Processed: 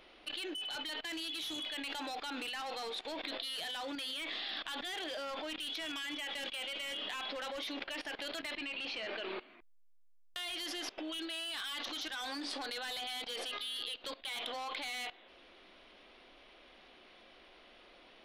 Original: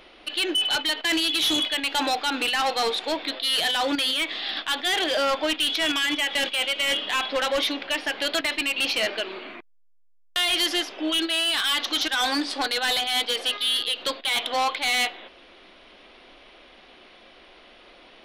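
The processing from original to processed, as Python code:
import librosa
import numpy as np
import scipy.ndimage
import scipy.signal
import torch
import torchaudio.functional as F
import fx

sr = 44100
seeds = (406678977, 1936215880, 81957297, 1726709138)

y = fx.lowpass(x, sr, hz=4200.0, slope=12, at=(8.52, 9.4))
y = fx.level_steps(y, sr, step_db=19)
y = F.gain(torch.from_numpy(y), -2.5).numpy()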